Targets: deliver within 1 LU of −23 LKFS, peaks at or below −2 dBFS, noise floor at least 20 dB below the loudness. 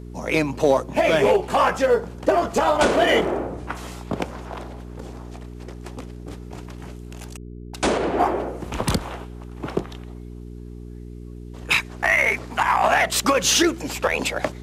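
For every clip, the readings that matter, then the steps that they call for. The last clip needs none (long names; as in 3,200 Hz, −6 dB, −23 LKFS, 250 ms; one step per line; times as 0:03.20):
mains hum 60 Hz; hum harmonics up to 420 Hz; level of the hum −34 dBFS; integrated loudness −21.0 LKFS; sample peak −6.5 dBFS; target loudness −23.0 LKFS
→ hum removal 60 Hz, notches 7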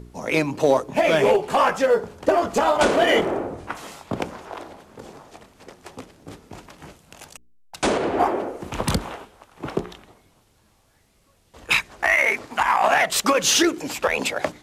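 mains hum none found; integrated loudness −21.0 LKFS; sample peak −6.5 dBFS; target loudness −23.0 LKFS
→ level −2 dB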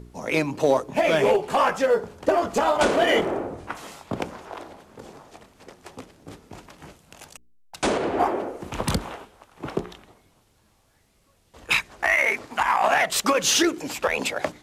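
integrated loudness −23.0 LKFS; sample peak −8.5 dBFS; background noise floor −63 dBFS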